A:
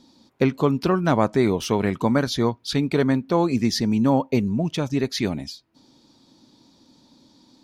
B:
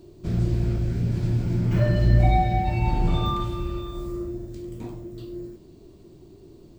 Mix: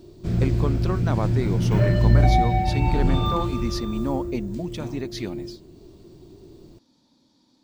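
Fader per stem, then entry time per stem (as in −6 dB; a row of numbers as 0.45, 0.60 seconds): −8.0, +1.5 decibels; 0.00, 0.00 seconds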